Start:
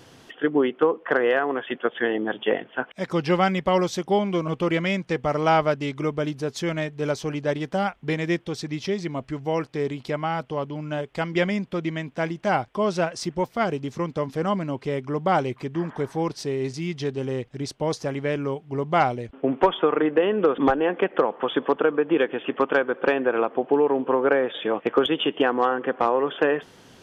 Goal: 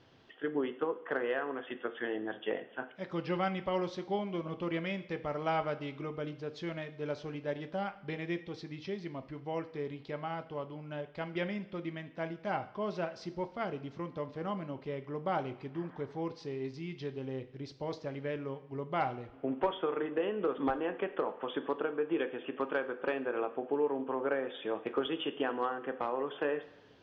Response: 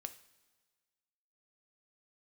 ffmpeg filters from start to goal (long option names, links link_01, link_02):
-filter_complex "[0:a]lowpass=frequency=4700:width=0.5412,lowpass=frequency=4700:width=1.3066[link_01];[1:a]atrim=start_sample=2205[link_02];[link_01][link_02]afir=irnorm=-1:irlink=0,volume=-8.5dB"